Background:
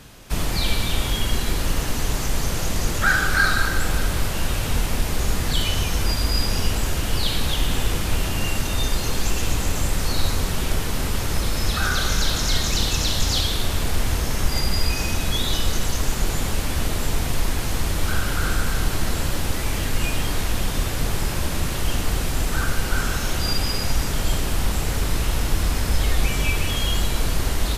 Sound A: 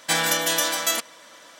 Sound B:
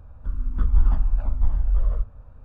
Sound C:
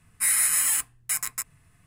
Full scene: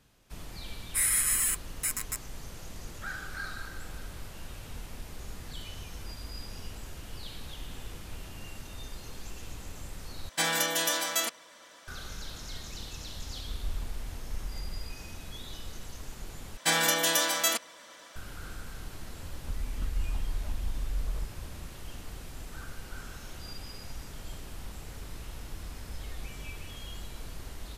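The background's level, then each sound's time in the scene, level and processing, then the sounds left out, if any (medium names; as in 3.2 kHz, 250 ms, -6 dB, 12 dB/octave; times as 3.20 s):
background -20 dB
0.74 s: add C -4.5 dB + Butterworth band-stop 830 Hz, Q 4.1
10.29 s: replace with A -6 dB
12.90 s: add B -18 dB
16.57 s: replace with A -3.5 dB
19.23 s: add B + compression 2.5:1, threshold -34 dBFS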